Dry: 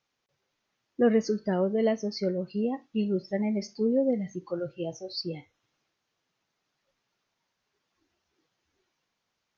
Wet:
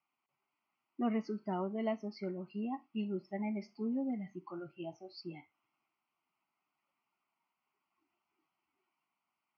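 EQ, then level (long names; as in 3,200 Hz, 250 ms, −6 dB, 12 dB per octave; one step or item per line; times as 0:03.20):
high-pass filter 310 Hz 12 dB per octave
high-frequency loss of the air 380 metres
phaser with its sweep stopped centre 2,500 Hz, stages 8
+1.0 dB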